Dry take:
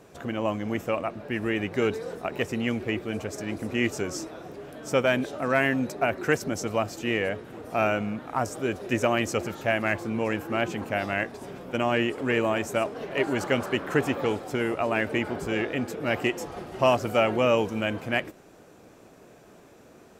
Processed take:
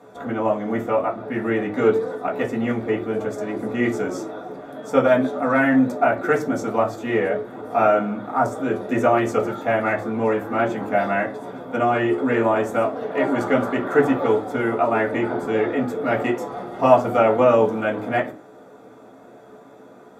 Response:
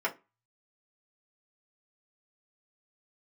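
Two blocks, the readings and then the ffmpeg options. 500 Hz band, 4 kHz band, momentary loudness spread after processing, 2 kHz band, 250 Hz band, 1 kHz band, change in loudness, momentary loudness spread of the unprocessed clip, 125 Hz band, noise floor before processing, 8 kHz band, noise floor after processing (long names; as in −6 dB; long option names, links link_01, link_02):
+7.0 dB, −5.5 dB, 9 LU, +2.5 dB, +6.5 dB, +8.0 dB, +6.0 dB, 9 LU, +2.0 dB, −52 dBFS, can't be measured, −46 dBFS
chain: -filter_complex "[1:a]atrim=start_sample=2205,asetrate=28665,aresample=44100[link_01];[0:a][link_01]afir=irnorm=-1:irlink=0,volume=-5dB"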